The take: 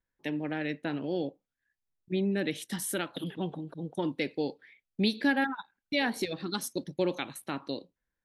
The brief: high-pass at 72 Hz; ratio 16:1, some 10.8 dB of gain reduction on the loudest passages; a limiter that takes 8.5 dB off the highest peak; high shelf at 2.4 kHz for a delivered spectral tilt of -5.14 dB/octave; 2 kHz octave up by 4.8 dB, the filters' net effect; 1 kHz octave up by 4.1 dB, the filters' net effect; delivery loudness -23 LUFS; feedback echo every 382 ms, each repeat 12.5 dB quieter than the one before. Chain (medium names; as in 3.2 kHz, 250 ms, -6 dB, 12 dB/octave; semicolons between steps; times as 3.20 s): high-pass 72 Hz; peaking EQ 1 kHz +5 dB; peaking EQ 2 kHz +7.5 dB; treble shelf 2.4 kHz -7 dB; compression 16:1, threshold -29 dBFS; peak limiter -26 dBFS; feedback delay 382 ms, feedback 24%, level -12.5 dB; trim +15 dB